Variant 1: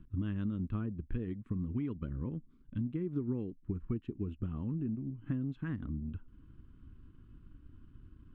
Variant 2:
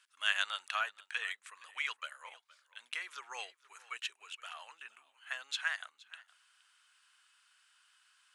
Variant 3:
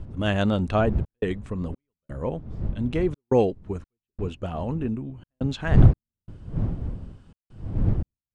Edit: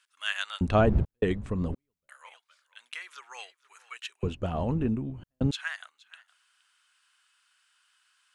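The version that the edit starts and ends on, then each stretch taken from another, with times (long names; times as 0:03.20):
2
0:00.61–0:02.09: punch in from 3
0:04.23–0:05.51: punch in from 3
not used: 1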